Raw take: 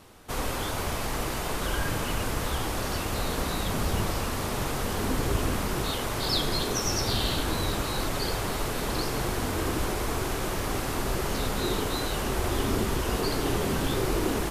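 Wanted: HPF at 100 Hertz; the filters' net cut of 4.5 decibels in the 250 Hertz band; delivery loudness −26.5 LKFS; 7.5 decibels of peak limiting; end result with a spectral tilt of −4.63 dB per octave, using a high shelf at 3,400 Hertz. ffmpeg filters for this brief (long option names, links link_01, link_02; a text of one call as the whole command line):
ffmpeg -i in.wav -af "highpass=100,equalizer=frequency=250:width_type=o:gain=-6,highshelf=frequency=3400:gain=-7,volume=8dB,alimiter=limit=-17dB:level=0:latency=1" out.wav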